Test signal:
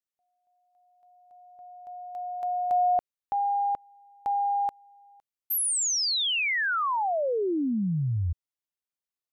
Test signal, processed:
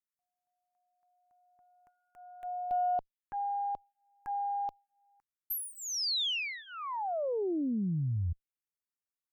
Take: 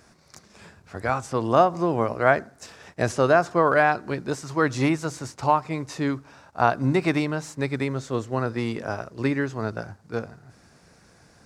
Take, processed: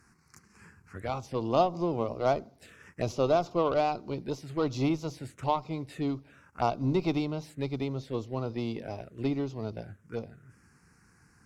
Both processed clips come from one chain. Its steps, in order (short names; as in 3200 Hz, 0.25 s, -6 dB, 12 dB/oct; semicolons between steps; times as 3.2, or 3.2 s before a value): added harmonics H 8 -26 dB, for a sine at -3 dBFS; envelope phaser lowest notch 580 Hz, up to 1700 Hz, full sweep at -24 dBFS; gain -4.5 dB